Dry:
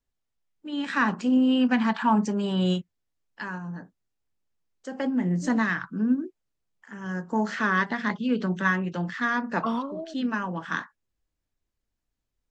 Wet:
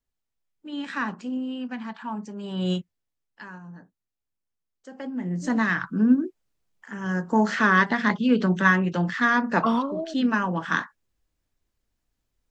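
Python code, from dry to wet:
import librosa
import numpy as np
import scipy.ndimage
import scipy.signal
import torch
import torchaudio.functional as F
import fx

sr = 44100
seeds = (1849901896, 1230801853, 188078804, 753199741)

y = fx.gain(x, sr, db=fx.line((0.76, -2.0), (1.56, -11.0), (2.3, -11.0), (2.76, 0.5), (3.47, -7.0), (5.06, -7.0), (5.87, 5.0)))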